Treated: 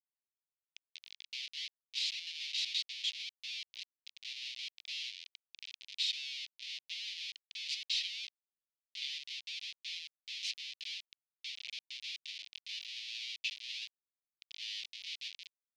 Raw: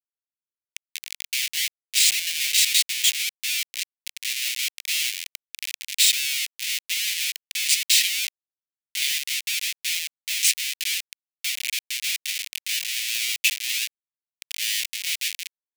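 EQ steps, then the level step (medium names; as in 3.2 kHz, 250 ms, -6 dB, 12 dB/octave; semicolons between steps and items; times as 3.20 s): ladder band-pass 5.1 kHz, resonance 25%; distance through air 290 m; peaking EQ 7.6 kHz +5.5 dB 2.9 oct; +1.0 dB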